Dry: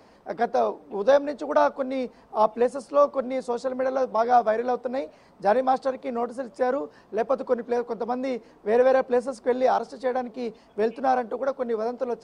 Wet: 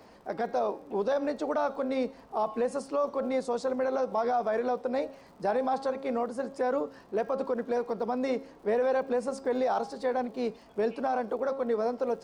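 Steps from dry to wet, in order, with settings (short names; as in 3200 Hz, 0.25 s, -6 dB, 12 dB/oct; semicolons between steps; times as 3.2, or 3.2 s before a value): de-hum 270.7 Hz, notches 30; limiter -20 dBFS, peak gain reduction 12.5 dB; crackle 79/s -52 dBFS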